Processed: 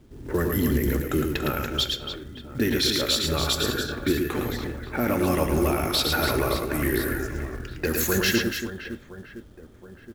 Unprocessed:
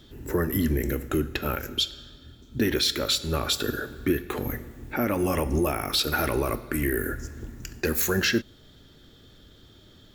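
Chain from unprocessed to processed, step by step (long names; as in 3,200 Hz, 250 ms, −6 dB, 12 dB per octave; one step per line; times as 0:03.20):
reverse bouncing-ball delay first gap 110 ms, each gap 1.6×, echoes 5
low-pass that shuts in the quiet parts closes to 830 Hz, open at −22 dBFS
log-companded quantiser 6 bits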